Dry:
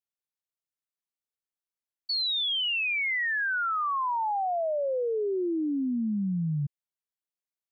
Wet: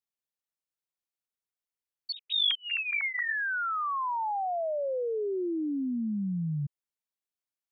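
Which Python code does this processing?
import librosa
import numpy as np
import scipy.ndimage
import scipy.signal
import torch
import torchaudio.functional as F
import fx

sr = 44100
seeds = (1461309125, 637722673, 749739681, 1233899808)

y = fx.sine_speech(x, sr, at=(2.12, 3.34))
y = y * librosa.db_to_amplitude(-2.5)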